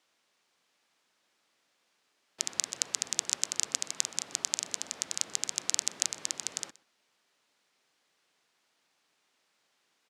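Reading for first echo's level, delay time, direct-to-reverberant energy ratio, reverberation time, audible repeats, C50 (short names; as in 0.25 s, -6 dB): -22.0 dB, 0.124 s, none, none, 1, none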